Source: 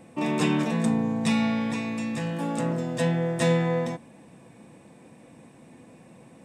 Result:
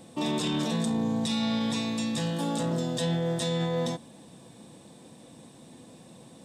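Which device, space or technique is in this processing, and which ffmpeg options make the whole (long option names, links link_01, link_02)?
over-bright horn tweeter: -af "highshelf=frequency=2900:width_type=q:width=3:gain=6,alimiter=limit=-20.5dB:level=0:latency=1:release=12"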